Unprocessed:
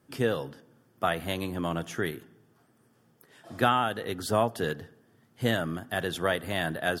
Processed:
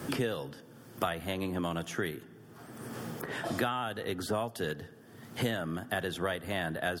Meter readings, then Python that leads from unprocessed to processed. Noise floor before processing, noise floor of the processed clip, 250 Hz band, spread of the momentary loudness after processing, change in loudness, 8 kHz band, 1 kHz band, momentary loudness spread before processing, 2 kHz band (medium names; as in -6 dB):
-66 dBFS, -54 dBFS, -3.0 dB, 15 LU, -5.0 dB, -2.5 dB, -6.5 dB, 8 LU, -4.0 dB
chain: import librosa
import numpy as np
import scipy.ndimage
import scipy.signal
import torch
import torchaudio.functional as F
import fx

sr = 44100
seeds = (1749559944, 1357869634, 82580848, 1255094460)

y = fx.band_squash(x, sr, depth_pct=100)
y = F.gain(torch.from_numpy(y), -4.5).numpy()